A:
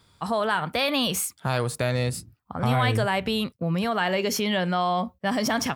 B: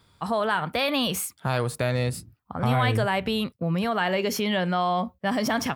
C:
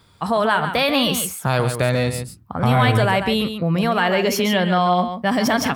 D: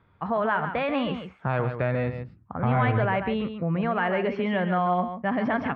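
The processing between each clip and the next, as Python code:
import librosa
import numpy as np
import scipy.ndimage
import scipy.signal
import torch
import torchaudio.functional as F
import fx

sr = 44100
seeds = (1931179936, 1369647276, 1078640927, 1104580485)

y1 = fx.peak_eq(x, sr, hz=6700.0, db=-4.0, octaves=1.4)
y2 = y1 + 10.0 ** (-8.5 / 20.0) * np.pad(y1, (int(140 * sr / 1000.0), 0))[:len(y1)]
y2 = y2 * 10.0 ** (6.0 / 20.0)
y3 = scipy.signal.sosfilt(scipy.signal.butter(4, 2300.0, 'lowpass', fs=sr, output='sos'), y2)
y3 = y3 * 10.0 ** (-6.5 / 20.0)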